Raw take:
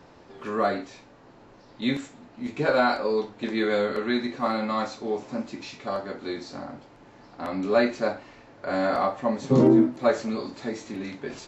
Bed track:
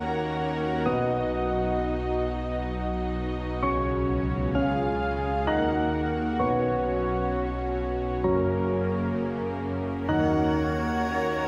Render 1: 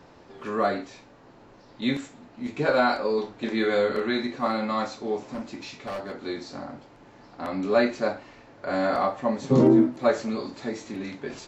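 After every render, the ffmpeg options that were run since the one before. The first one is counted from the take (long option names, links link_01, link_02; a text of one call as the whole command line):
ffmpeg -i in.wav -filter_complex "[0:a]asettb=1/sr,asplit=3[link_01][link_02][link_03];[link_01]atrim=end=3.154[link_04];[link_02]atrim=start=3.15:end=4.24,asetpts=PTS-STARTPTS,afade=type=in:duration=0.004:curve=qsin,afade=type=out:start_time=1.086:duration=0.004:curve=qsin,asplit=2[link_05][link_06];[link_06]adelay=31,volume=-7dB[link_07];[link_05][link_07]amix=inputs=2:normalize=0,atrim=end_sample=48069[link_08];[link_03]atrim=start=4.236[link_09];[link_04][link_08]acrossfade=duration=0.004:curve1=hsin:curve2=qsin[link_10];[link_10][link_09]acrossfade=duration=0.004:curve1=qsin:curve2=hsin,asettb=1/sr,asplit=3[link_11][link_12][link_13];[link_11]atrim=end=5.314[link_14];[link_12]atrim=start=5.31:end=6.21,asetpts=PTS-STARTPTS,afade=type=in:duration=0.004:curve=qsin,afade=type=out:start_time=0.896:duration=0.004:curve=qsin,asoftclip=type=hard:threshold=-29.5dB[link_15];[link_13]atrim=start=6.206[link_16];[link_14][link_15]acrossfade=duration=0.004:curve1=hsin:curve2=qsin[link_17];[link_17][link_16]acrossfade=duration=0.004:curve1=qsin:curve2=hsin" out.wav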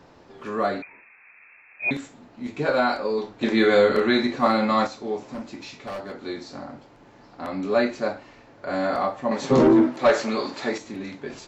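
ffmpeg -i in.wav -filter_complex "[0:a]asettb=1/sr,asplit=3[link_01][link_02][link_03];[link_01]atrim=end=0.824[link_04];[link_02]atrim=start=0.82:end=1.91,asetpts=PTS-STARTPTS,afade=type=in:duration=0.004:curve=qsin,afade=type=out:start_time=1.086:duration=0.004:curve=qsin,lowpass=frequency=2300:width_type=q:width=0.5098,lowpass=frequency=2300:width_type=q:width=0.6013,lowpass=frequency=2300:width_type=q:width=0.9,lowpass=frequency=2300:width_type=q:width=2.563,afreqshift=-2700[link_05];[link_03]atrim=start=1.906[link_06];[link_04][link_05]acrossfade=duration=0.004:curve1=hsin:curve2=qsin[link_07];[link_07][link_06]acrossfade=duration=0.004:curve1=qsin:curve2=hsin,asettb=1/sr,asplit=3[link_08][link_09][link_10];[link_08]atrim=end=9.314[link_11];[link_09]atrim=start=9.31:end=10.78,asetpts=PTS-STARTPTS,afade=type=in:duration=0.004:curve=qsin,afade=type=out:start_time=1.466:duration=0.004:curve=qsin,asplit=2[link_12][link_13];[link_13]highpass=frequency=720:poles=1,volume=16dB,asoftclip=type=tanh:threshold=-7dB[link_14];[link_12][link_14]amix=inputs=2:normalize=0,lowpass=frequency=4900:poles=1,volume=-6dB[link_15];[link_10]atrim=start=10.776[link_16];[link_11][link_15]acrossfade=duration=0.004:curve1=hsin:curve2=qsin[link_17];[link_17][link_16]acrossfade=duration=0.004:curve1=qsin:curve2=hsin,asplit=3[link_18][link_19][link_20];[link_18]atrim=end=3.412[link_21];[link_19]atrim=start=3.408:end=4.872,asetpts=PTS-STARTPTS,volume=6dB[link_22];[link_20]atrim=start=4.868[link_23];[link_21][link_22]acrossfade=duration=0.004:curve1=hsin:curve2=hsin[link_24];[link_24][link_23]acrossfade=duration=0.004:curve1=hsin:curve2=hsin" out.wav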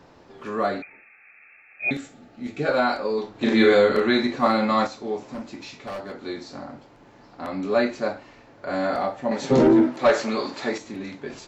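ffmpeg -i in.wav -filter_complex "[0:a]asettb=1/sr,asplit=3[link_01][link_02][link_03];[link_01]atrim=end=0.804[link_04];[link_02]atrim=start=0.8:end=2.71,asetpts=PTS-STARTPTS,afade=type=in:duration=0.004:curve=qsin,afade=type=out:start_time=1.906:duration=0.004:curve=qsin,asuperstop=centerf=1000:order=20:qfactor=5.1[link_05];[link_03]atrim=start=2.706[link_06];[link_04][link_05]acrossfade=duration=0.004:curve1=hsin:curve2=qsin[link_07];[link_07][link_06]acrossfade=duration=0.004:curve1=qsin:curve2=hsin,asettb=1/sr,asplit=3[link_08][link_09][link_10];[link_08]atrim=end=3.314[link_11];[link_09]atrim=start=3.31:end=3.74,asetpts=PTS-STARTPTS,afade=type=in:duration=0.004:curve=qsin,afade=type=out:start_time=0.426:duration=0.004:curve=qsin,asplit=2[link_12][link_13];[link_13]adelay=40,volume=-3dB[link_14];[link_12][link_14]amix=inputs=2:normalize=0,atrim=end_sample=18963[link_15];[link_10]atrim=start=3.736[link_16];[link_11][link_15]acrossfade=duration=0.004:curve1=hsin:curve2=qsin[link_17];[link_17][link_16]acrossfade=duration=0.004:curve1=qsin:curve2=hsin,asettb=1/sr,asplit=3[link_18][link_19][link_20];[link_18]atrim=end=8.934[link_21];[link_19]atrim=start=8.93:end=9.88,asetpts=PTS-STARTPTS,afade=type=in:duration=0.004:curve=qsin,afade=type=out:start_time=0.946:duration=0.004:curve=qsin,bandreject=frequency=1100:width=6.1[link_22];[link_20]atrim=start=9.876[link_23];[link_21][link_22]acrossfade=duration=0.004:curve1=hsin:curve2=qsin[link_24];[link_24][link_23]acrossfade=duration=0.004:curve1=qsin:curve2=hsin" out.wav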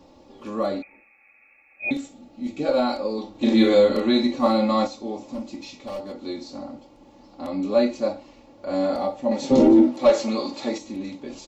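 ffmpeg -i in.wav -af "equalizer=frequency=1600:width_type=o:width=0.77:gain=-15,aecho=1:1:3.6:0.6" out.wav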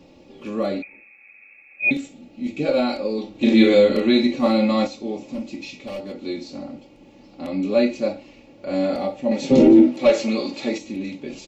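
ffmpeg -i in.wav -af "equalizer=frequency=160:width_type=o:width=0.67:gain=8,equalizer=frequency=400:width_type=o:width=0.67:gain=4,equalizer=frequency=1000:width_type=o:width=0.67:gain=-6,equalizer=frequency=2500:width_type=o:width=0.67:gain=9" out.wav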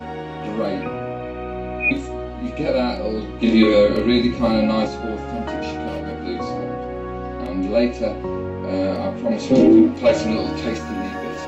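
ffmpeg -i in.wav -i bed.wav -filter_complex "[1:a]volume=-2.5dB[link_01];[0:a][link_01]amix=inputs=2:normalize=0" out.wav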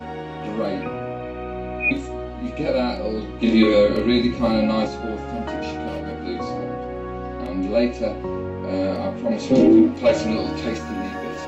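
ffmpeg -i in.wav -af "volume=-1.5dB" out.wav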